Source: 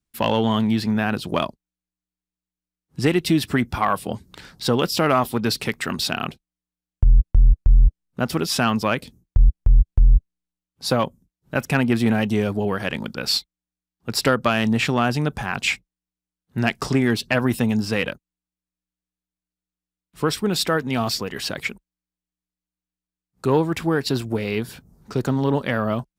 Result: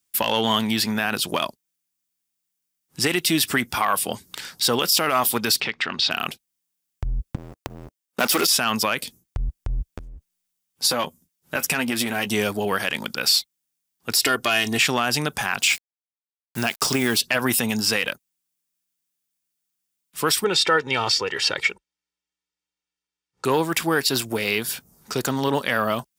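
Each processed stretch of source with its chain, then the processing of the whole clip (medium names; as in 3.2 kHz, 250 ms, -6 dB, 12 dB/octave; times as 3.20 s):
5.60–6.11 s: low-pass 4.3 kHz 24 dB/octave + compression 2.5:1, threshold -27 dBFS
7.35–8.47 s: high-pass 290 Hz + waveshaping leveller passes 3
9.93–12.27 s: compression 12:1, threshold -19 dBFS + doubling 12 ms -8 dB
14.11–14.79 s: peaking EQ 1.1 kHz -4 dB 0.92 oct + comb 2.8 ms, depth 72%
15.62–17.19 s: peaking EQ 1.9 kHz -6.5 dB 0.3 oct + word length cut 8-bit, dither none
20.44–23.45 s: high-pass 51 Hz + distance through air 120 m + comb 2.2 ms
whole clip: tilt EQ +3.5 dB/octave; band-stop 4.1 kHz, Q 20; loudness maximiser +11.5 dB; trim -8 dB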